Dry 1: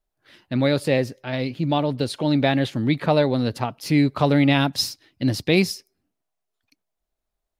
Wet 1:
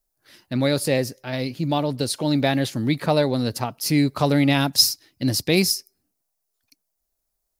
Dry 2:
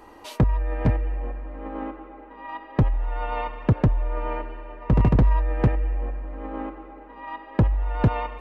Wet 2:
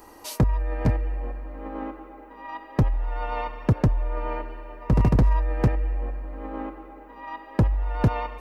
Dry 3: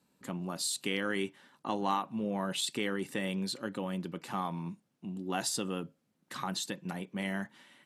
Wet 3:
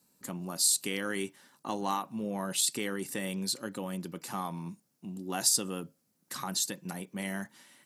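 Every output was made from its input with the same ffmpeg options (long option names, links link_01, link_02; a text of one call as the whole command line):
ffmpeg -i in.wav -af "aexciter=amount=4:drive=3:freq=4600,volume=-1dB" out.wav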